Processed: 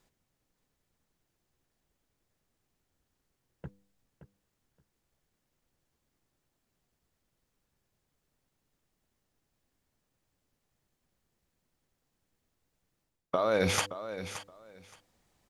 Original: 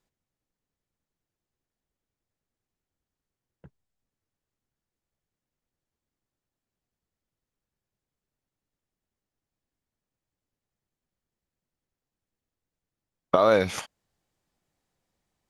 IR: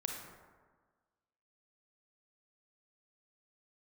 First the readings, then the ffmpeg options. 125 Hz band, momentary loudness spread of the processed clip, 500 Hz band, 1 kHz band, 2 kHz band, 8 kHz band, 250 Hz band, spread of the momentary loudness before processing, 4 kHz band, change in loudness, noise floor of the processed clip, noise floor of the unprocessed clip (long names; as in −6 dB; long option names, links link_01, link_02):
−0.5 dB, 23 LU, −7.0 dB, −7.0 dB, −2.0 dB, +5.0 dB, −4.5 dB, 13 LU, +1.5 dB, −8.0 dB, −82 dBFS, below −85 dBFS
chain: -af "bandreject=frequency=99.54:width_type=h:width=4,bandreject=frequency=199.08:width_type=h:width=4,bandreject=frequency=298.62:width_type=h:width=4,bandreject=frequency=398.16:width_type=h:width=4,bandreject=frequency=497.7:width_type=h:width=4,areverse,acompressor=threshold=-33dB:ratio=8,areverse,aecho=1:1:572|1144:0.251|0.0427,volume=8dB"